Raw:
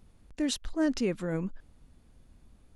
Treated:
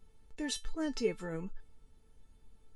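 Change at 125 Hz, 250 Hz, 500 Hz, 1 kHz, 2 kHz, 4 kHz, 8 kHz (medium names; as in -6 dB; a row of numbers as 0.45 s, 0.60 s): -8.5 dB, -8.5 dB, -3.0 dB, -4.0 dB, -4.0 dB, -4.0 dB, -3.5 dB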